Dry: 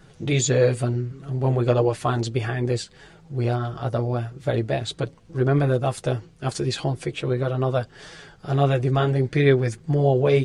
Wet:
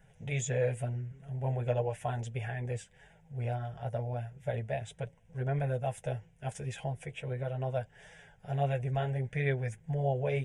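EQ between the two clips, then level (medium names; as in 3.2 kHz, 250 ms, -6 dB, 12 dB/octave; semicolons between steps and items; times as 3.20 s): static phaser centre 1.2 kHz, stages 6; -8.5 dB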